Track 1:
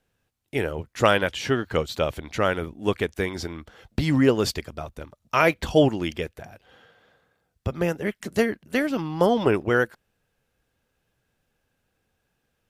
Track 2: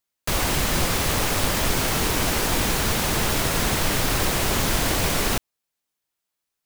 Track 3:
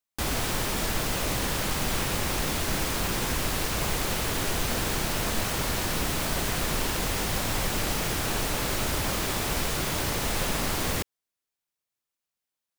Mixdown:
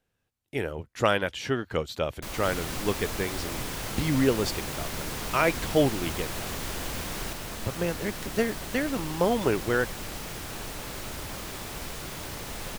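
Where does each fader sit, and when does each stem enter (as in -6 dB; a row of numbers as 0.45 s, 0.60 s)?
-4.5 dB, -14.5 dB, -9.0 dB; 0.00 s, 1.95 s, 2.25 s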